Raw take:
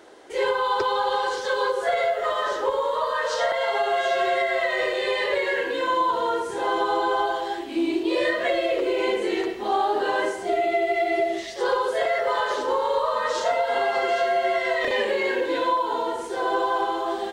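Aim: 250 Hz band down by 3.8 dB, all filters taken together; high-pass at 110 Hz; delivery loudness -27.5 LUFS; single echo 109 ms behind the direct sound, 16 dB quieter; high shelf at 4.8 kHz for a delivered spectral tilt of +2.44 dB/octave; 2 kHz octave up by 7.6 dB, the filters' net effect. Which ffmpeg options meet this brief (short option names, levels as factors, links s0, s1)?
-af "highpass=110,equalizer=f=250:t=o:g=-7,equalizer=f=2000:t=o:g=8.5,highshelf=f=4800:g=3.5,aecho=1:1:109:0.158,volume=0.473"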